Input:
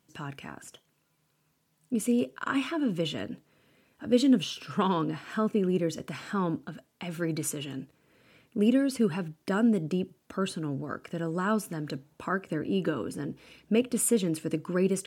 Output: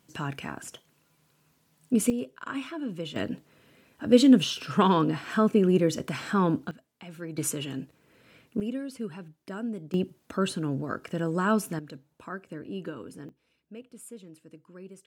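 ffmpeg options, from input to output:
-af "asetnsamples=n=441:p=0,asendcmd='2.1 volume volume -5.5dB;3.16 volume volume 5dB;6.71 volume volume -7.5dB;7.38 volume volume 2.5dB;8.6 volume volume -9.5dB;9.94 volume volume 3dB;11.79 volume volume -8dB;13.29 volume volume -19.5dB',volume=5.5dB"

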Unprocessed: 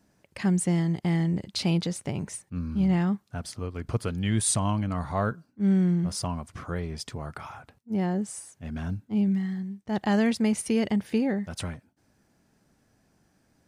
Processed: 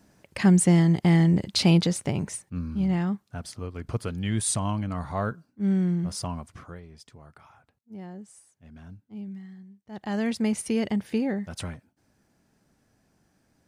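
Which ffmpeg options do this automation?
-af "volume=18.5dB,afade=t=out:st=1.74:d=1.02:silence=0.421697,afade=t=out:st=6.4:d=0.41:silence=0.251189,afade=t=in:st=9.9:d=0.52:silence=0.237137"

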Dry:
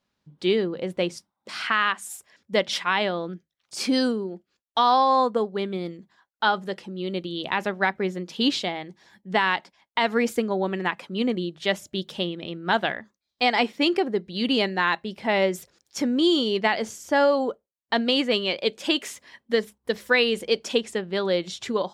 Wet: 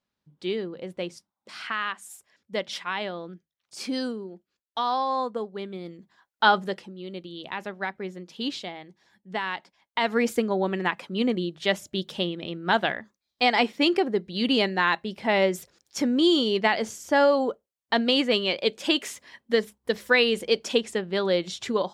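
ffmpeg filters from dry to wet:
-af "volume=11.5dB,afade=t=in:st=5.84:d=0.7:silence=0.298538,afade=t=out:st=6.54:d=0.41:silence=0.266073,afade=t=in:st=9.51:d=0.81:silence=0.398107"

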